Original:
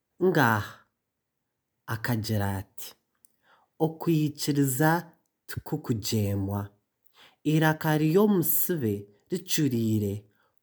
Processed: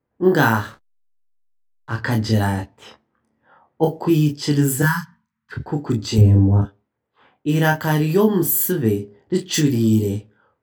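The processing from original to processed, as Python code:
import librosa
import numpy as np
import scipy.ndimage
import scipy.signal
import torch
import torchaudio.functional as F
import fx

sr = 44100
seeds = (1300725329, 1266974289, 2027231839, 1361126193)

p1 = fx.cheby1_bandstop(x, sr, low_hz=240.0, high_hz=970.0, order=5, at=(4.82, 5.52))
p2 = fx.env_lowpass(p1, sr, base_hz=1500.0, full_db=-21.5)
p3 = fx.tilt_eq(p2, sr, slope=-4.0, at=(6.18, 6.62))
p4 = fx.rider(p3, sr, range_db=5, speed_s=0.5)
p5 = p3 + (p4 * 10.0 ** (2.0 / 20.0))
p6 = fx.backlash(p5, sr, play_db=-34.5, at=(0.58, 1.95))
p7 = p6 + fx.room_early_taps(p6, sr, ms=(27, 41), db=(-3.5, -10.5), dry=0)
y = p7 * 10.0 ** (-1.5 / 20.0)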